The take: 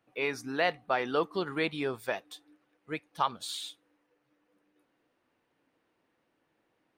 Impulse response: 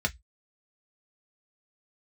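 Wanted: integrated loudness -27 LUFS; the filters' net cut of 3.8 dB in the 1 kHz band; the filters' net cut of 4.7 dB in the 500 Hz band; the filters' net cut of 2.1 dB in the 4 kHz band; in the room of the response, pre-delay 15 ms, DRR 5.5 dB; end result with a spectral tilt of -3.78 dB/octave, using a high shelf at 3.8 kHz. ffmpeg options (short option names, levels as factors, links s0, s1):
-filter_complex "[0:a]equalizer=f=500:t=o:g=-5,equalizer=f=1000:t=o:g=-3.5,highshelf=f=3800:g=3,equalizer=f=4000:t=o:g=-4,asplit=2[s0][s1];[1:a]atrim=start_sample=2205,adelay=15[s2];[s1][s2]afir=irnorm=-1:irlink=0,volume=0.211[s3];[s0][s3]amix=inputs=2:normalize=0,volume=2.37"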